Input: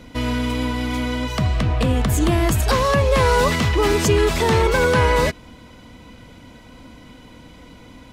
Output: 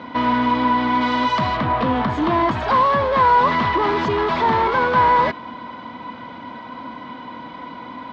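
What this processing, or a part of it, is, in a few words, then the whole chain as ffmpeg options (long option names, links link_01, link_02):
overdrive pedal into a guitar cabinet: -filter_complex "[0:a]asplit=2[link_01][link_02];[link_02]highpass=frequency=720:poles=1,volume=24dB,asoftclip=type=tanh:threshold=-8dB[link_03];[link_01][link_03]amix=inputs=2:normalize=0,lowpass=frequency=1500:poles=1,volume=-6dB,highpass=93,equalizer=frequency=240:width_type=q:width=4:gain=4,equalizer=frequency=460:width_type=q:width=4:gain=-5,equalizer=frequency=1000:width_type=q:width=4:gain=9,equalizer=frequency=2600:width_type=q:width=4:gain=-6,lowpass=frequency=4200:width=0.5412,lowpass=frequency=4200:width=1.3066,asettb=1/sr,asplit=3[link_04][link_05][link_06];[link_04]atrim=end=1.014[link_07];[link_05]atrim=start=1.01:end=1.57,asetpts=PTS-STARTPTS,afade=type=in:duration=0.004:curve=qsin,afade=type=out:start_time=0.556:duration=0.004:curve=qsin,aemphasis=mode=production:type=75fm[link_08];[link_06]atrim=start=1.566[link_09];[link_07][link_08]acrossfade=duration=0.004:curve1=hsin:curve2=qsin[link_10];[link_10][link_09]acrossfade=duration=0.004:curve1=qsin:curve2=hsin,volume=-4dB"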